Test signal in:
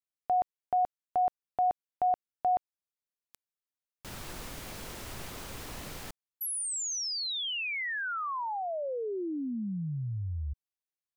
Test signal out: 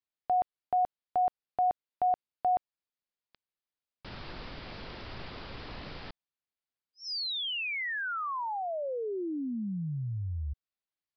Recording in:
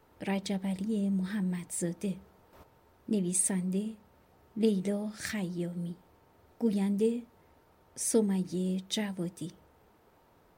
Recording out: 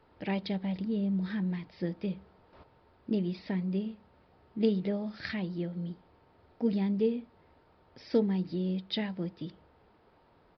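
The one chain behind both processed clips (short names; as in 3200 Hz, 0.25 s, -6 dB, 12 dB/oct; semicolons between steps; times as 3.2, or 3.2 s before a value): downsampling 11025 Hz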